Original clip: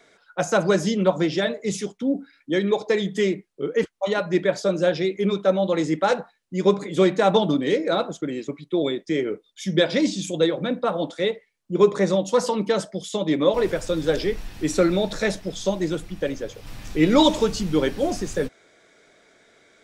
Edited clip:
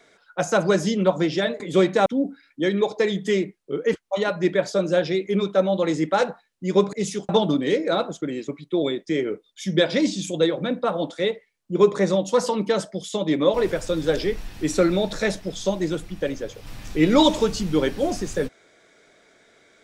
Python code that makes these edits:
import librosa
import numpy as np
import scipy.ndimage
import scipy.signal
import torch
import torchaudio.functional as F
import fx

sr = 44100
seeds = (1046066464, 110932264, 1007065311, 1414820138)

y = fx.edit(x, sr, fx.swap(start_s=1.6, length_s=0.36, other_s=6.83, other_length_s=0.46), tone=tone)